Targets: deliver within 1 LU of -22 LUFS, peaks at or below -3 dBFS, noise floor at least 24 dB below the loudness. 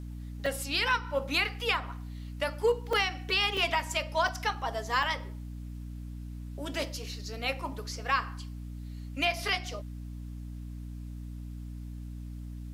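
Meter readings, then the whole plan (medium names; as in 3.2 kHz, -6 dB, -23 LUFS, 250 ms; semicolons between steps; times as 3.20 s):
dropouts 5; longest dropout 3.3 ms; hum 60 Hz; highest harmonic 300 Hz; hum level -38 dBFS; loudness -30.5 LUFS; peak level -13.5 dBFS; loudness target -22.0 LUFS
-> interpolate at 0.46/2.93/3.57/4.28/5.03 s, 3.3 ms; hum notches 60/120/180/240/300 Hz; trim +8.5 dB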